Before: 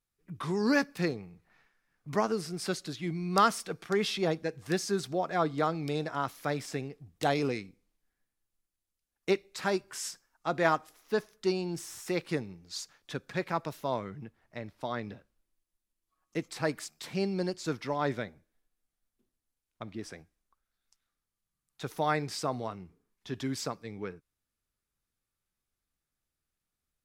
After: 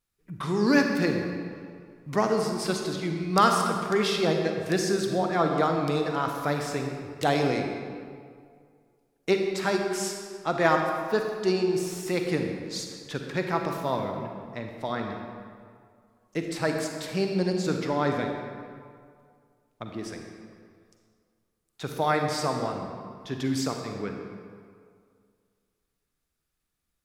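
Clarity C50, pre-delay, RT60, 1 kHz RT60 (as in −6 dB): 3.5 dB, 38 ms, 2.1 s, 2.1 s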